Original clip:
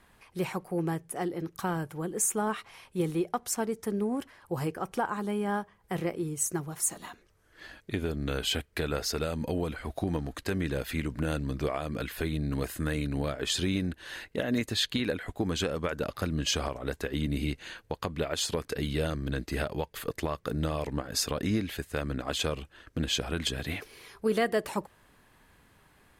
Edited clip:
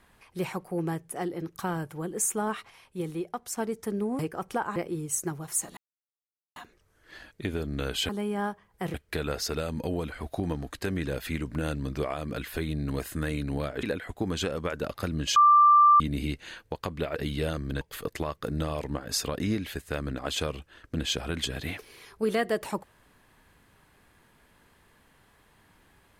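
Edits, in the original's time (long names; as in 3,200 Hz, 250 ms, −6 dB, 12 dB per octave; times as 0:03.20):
0:02.70–0:03.57: clip gain −4 dB
0:04.19–0:04.62: remove
0:05.19–0:06.04: move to 0:08.58
0:07.05: splice in silence 0.79 s
0:13.47–0:15.02: remove
0:16.55–0:17.19: beep over 1,180 Hz −14 dBFS
0:18.35–0:18.73: remove
0:19.38–0:19.84: remove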